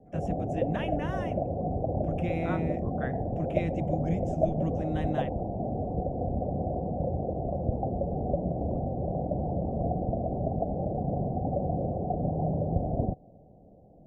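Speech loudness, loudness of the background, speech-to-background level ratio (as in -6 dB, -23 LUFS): -36.0 LUFS, -31.0 LUFS, -5.0 dB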